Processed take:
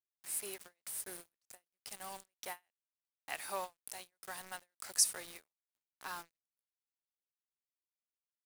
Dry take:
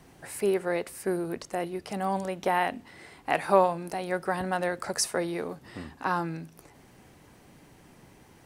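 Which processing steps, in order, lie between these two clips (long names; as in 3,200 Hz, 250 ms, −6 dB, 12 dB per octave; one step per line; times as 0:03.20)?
first-order pre-emphasis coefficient 0.97
bit-depth reduction 8 bits, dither none
every ending faded ahead of time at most 400 dB per second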